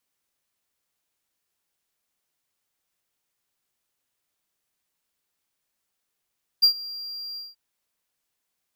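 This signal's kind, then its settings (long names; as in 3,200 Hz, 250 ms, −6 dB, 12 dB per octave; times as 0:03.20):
note with an ADSR envelope triangle 4,760 Hz, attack 18 ms, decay 91 ms, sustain −21 dB, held 0.75 s, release 180 ms −9.5 dBFS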